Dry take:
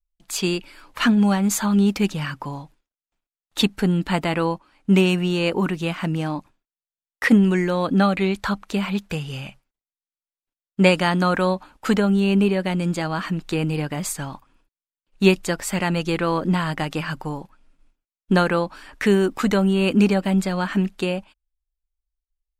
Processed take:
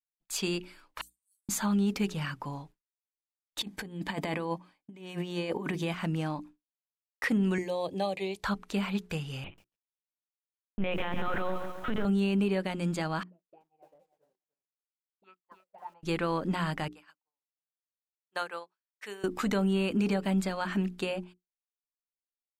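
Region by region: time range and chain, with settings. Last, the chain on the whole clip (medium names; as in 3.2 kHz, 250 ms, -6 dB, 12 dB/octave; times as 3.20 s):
1.01–1.49 s: inverse Chebyshev high-pass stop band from 1.8 kHz, stop band 80 dB + waveshaping leveller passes 1
3.61–5.94 s: compressor with a negative ratio -24 dBFS, ratio -0.5 + comb of notches 1.4 kHz
7.58–8.43 s: high-pass 120 Hz + static phaser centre 580 Hz, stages 4
9.44–12.05 s: LPC vocoder at 8 kHz pitch kept + bit-crushed delay 139 ms, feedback 55%, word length 7-bit, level -10.5 dB
13.23–16.03 s: auto-wah 260–1300 Hz, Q 19, up, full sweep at -16 dBFS + bit-crushed delay 298 ms, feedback 35%, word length 10-bit, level -4 dB
16.88–19.24 s: high-pass 610 Hz + treble shelf 9.2 kHz +4.5 dB + upward expansion 2.5:1, over -35 dBFS
whole clip: hum notches 60/120/180/240/300/360/420 Hz; expander -39 dBFS; peak limiter -13.5 dBFS; trim -7 dB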